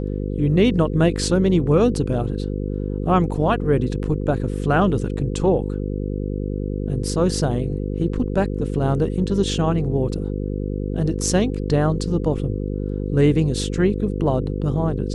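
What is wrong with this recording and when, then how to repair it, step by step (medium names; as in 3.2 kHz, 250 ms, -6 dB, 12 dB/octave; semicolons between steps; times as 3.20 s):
buzz 50 Hz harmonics 10 -25 dBFS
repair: de-hum 50 Hz, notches 10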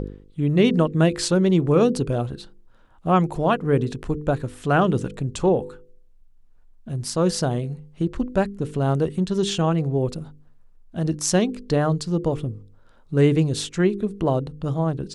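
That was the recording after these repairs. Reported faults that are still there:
nothing left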